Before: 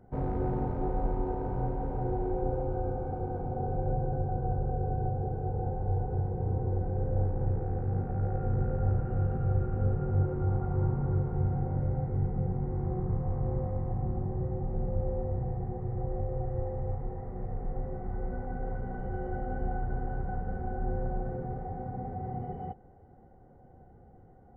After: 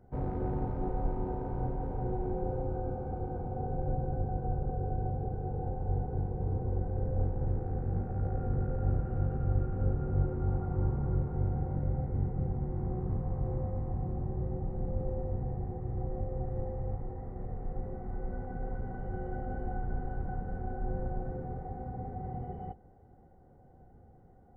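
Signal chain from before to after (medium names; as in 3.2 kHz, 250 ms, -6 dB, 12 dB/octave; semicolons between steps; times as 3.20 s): octave divider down 1 oct, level -3 dB; trim -3.5 dB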